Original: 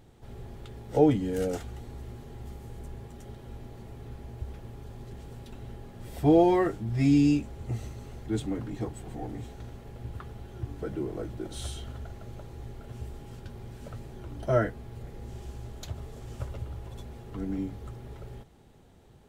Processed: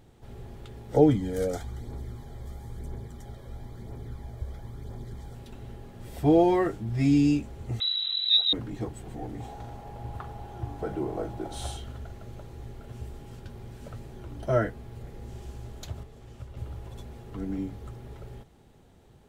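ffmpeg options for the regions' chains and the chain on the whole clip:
-filter_complex "[0:a]asettb=1/sr,asplit=3[a][b][c];[a]atrim=end=0.944[d];[b]atrim=start=0.94:end=5.35,asetpts=PTS-STARTPTS,afade=t=in:d=0.004:c=qsin,afade=t=out:st=4.406:d=0.004:c=qsin,asuperstop=centerf=2700:order=8:qfactor=5.1,aphaser=in_gain=1:out_gain=1:delay=1.9:decay=0.38:speed=1:type=triangular[e];[c]atrim=start=5.346[f];[d][e]acrossfade=d=0.004:c1=hsin:c2=qsin[g];[g][f]acrossfade=d=0.004:c1=qsin:c2=hsin,asettb=1/sr,asplit=3[h][i][j];[h]atrim=end=7.804[k];[i]atrim=start=7.8:end=8.53,asetpts=PTS-STARTPTS,afade=t=in:d=0.004:c=qsin,afade=t=out:st=0.726:d=0.004:c=qsin,acompressor=mode=upward:threshold=-32dB:ratio=2.5:attack=3.2:release=140:knee=2.83:detection=peak,lowshelf=f=380:g=10.5,lowpass=f=3.4k:t=q:w=0.5098,lowpass=f=3.4k:t=q:w=0.6013,lowpass=f=3.4k:t=q:w=0.9,lowpass=f=3.4k:t=q:w=2.563,afreqshift=-4000[l];[j]atrim=start=8.526[m];[k][l]acrossfade=d=0.004:c1=hsin:c2=qsin[n];[n][m]acrossfade=d=0.004:c1=qsin:c2=hsin,asettb=1/sr,asplit=3[o][p][q];[o]atrim=end=9.404[r];[p]atrim=start=9.4:end=11.77,asetpts=PTS-STARTPTS,afade=t=in:d=0.004:c=qsin,afade=t=out:st=2.366:d=0.004:c=qsin,equalizer=f=800:t=o:w=0.74:g=12.5,asplit=2[s][t];[t]adelay=41,volume=-10.5dB[u];[s][u]amix=inputs=2:normalize=0,atrim=end_sample=104517[v];[q]atrim=start=11.766[w];[r][v]acrossfade=d=0.004:c1=hsin:c2=qsin[x];[x][w]acrossfade=d=0.004:c1=qsin:c2=hsin,asettb=1/sr,asplit=3[y][z][aa];[y]atrim=end=16.034[ab];[z]atrim=start=16.03:end=16.57,asetpts=PTS-STARTPTS,afade=t=in:d=0.004:c=qsin,afade=t=out:st=0.536:d=0.004:c=qsin,bass=f=250:g=-6,treble=f=4k:g=-9,acrossover=split=260|3000[ac][ad][ae];[ad]acompressor=threshold=-54dB:ratio=4:attack=3.2:release=140:knee=2.83:detection=peak[af];[ac][af][ae]amix=inputs=3:normalize=0[ag];[aa]atrim=start=16.566[ah];[ab][ag]acrossfade=d=0.004:c1=hsin:c2=qsin[ai];[ai][ah]acrossfade=d=0.004:c1=qsin:c2=hsin"

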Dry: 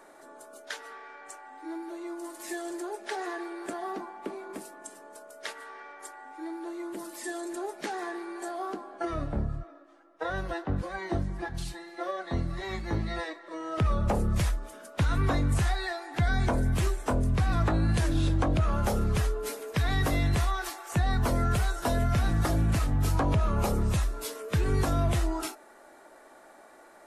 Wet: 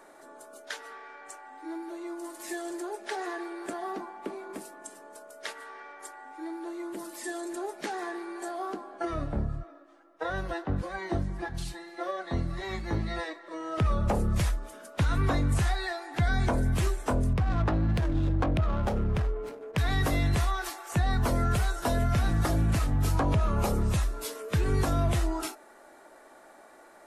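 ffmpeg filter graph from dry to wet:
-filter_complex "[0:a]asettb=1/sr,asplit=3[a][b][c];[a]atrim=end=17.334[d];[b]atrim=start=17.33:end=19.78,asetpts=PTS-STARTPTS,afade=t=in:d=0.004:c=qsin,afade=t=out:st=2.446:d=0.004:c=qsin,aemphasis=mode=production:type=75fm,adynamicsmooth=sensitivity=2:basefreq=580[e];[c]atrim=start=19.776[f];[d][e]acrossfade=d=0.004:c1=hsin:c2=qsin[g];[g][f]acrossfade=d=0.004:c1=qsin:c2=hsin"

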